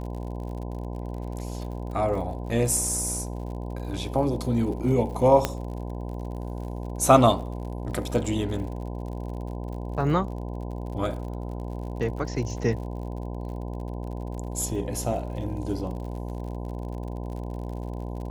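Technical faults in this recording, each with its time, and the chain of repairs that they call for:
mains buzz 60 Hz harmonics 17 −33 dBFS
surface crackle 56 per second −37 dBFS
0:05.45: click −8 dBFS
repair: click removal
hum removal 60 Hz, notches 17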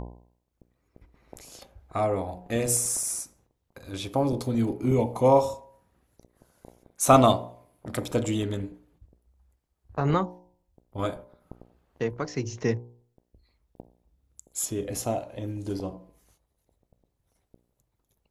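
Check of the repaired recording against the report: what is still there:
0:05.45: click

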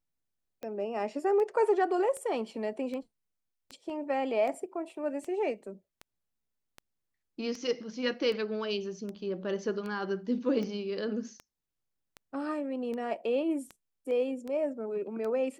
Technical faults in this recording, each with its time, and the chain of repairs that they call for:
scratch tick 78 rpm −27 dBFS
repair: click removal

